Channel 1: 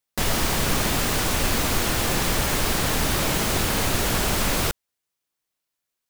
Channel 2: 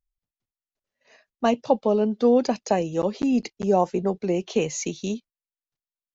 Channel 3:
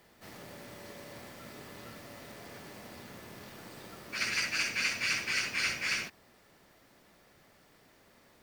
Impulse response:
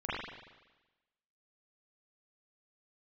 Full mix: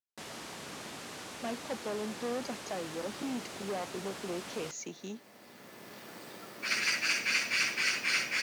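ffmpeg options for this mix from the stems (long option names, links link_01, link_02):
-filter_complex "[0:a]lowpass=8900,volume=-19dB[link_01];[1:a]asoftclip=type=tanh:threshold=-20.5dB,volume=-11dB,asplit=2[link_02][link_03];[2:a]adelay=2500,volume=1.5dB[link_04];[link_03]apad=whole_len=481897[link_05];[link_04][link_05]sidechaincompress=threshold=-47dB:ratio=12:attack=16:release=1090[link_06];[link_01][link_02][link_06]amix=inputs=3:normalize=0,highpass=190"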